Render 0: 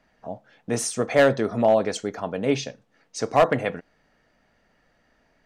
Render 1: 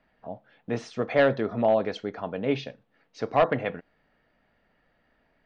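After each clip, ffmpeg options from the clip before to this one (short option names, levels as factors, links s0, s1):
-af "lowpass=f=4000:w=0.5412,lowpass=f=4000:w=1.3066,volume=0.668"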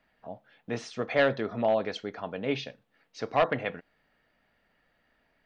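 -af "tiltshelf=f=1500:g=-3.5,volume=0.891"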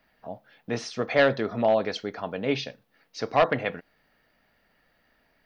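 -af "aexciter=amount=1.6:drive=3.4:freq=4400,volume=1.5"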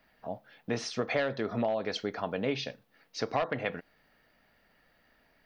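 -af "acompressor=threshold=0.0501:ratio=10"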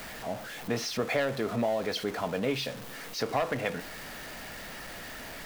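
-af "aeval=exprs='val(0)+0.5*0.015*sgn(val(0))':c=same"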